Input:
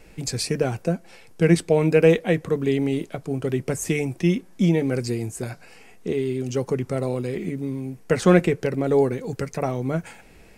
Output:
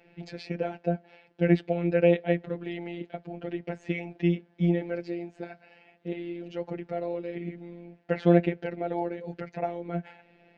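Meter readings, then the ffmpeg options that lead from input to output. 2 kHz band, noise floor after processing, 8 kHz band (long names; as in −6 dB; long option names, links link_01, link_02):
−7.5 dB, −62 dBFS, below −30 dB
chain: -af "highpass=120,equalizer=frequency=120:width_type=q:width=4:gain=-9,equalizer=frequency=730:width_type=q:width=4:gain=6,equalizer=frequency=1100:width_type=q:width=4:gain=-10,lowpass=frequency=3400:width=0.5412,lowpass=frequency=3400:width=1.3066,afftfilt=real='hypot(re,im)*cos(PI*b)':imag='0':win_size=1024:overlap=0.75,volume=-3dB"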